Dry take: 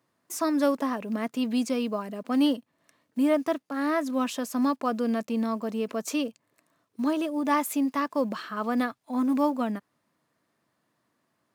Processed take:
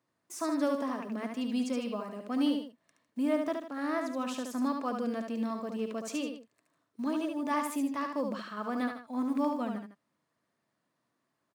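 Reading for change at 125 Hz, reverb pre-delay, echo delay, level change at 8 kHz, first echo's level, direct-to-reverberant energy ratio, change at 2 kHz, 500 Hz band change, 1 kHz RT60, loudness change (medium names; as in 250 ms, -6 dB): no reading, no reverb, 72 ms, -6.5 dB, -5.0 dB, no reverb, -5.5 dB, -5.5 dB, no reverb, -5.5 dB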